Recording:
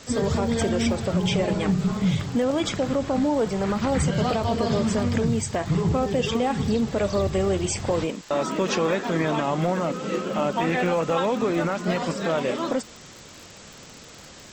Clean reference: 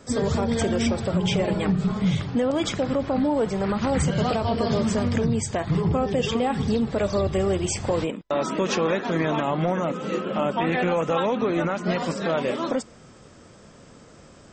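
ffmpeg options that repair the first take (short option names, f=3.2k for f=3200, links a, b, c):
-af "adeclick=t=4,afftdn=nr=6:nf=-44"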